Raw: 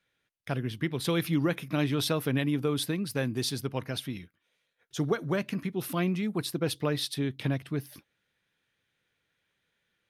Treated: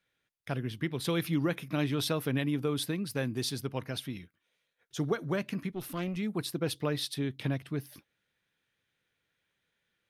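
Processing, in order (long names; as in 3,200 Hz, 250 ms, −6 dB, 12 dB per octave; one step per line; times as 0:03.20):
0:05.71–0:06.17: tube saturation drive 25 dB, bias 0.6
level −2.5 dB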